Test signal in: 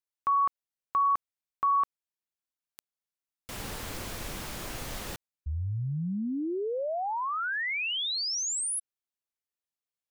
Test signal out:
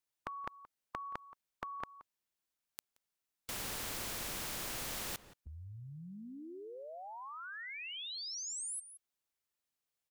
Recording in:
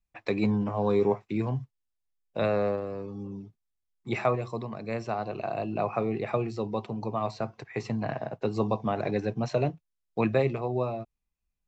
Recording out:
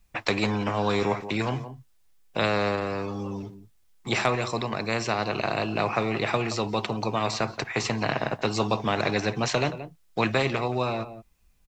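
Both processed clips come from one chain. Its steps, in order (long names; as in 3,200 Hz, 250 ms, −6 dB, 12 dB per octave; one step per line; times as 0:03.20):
slap from a distant wall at 30 metres, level −23 dB
every bin compressed towards the loudest bin 2 to 1
level +3.5 dB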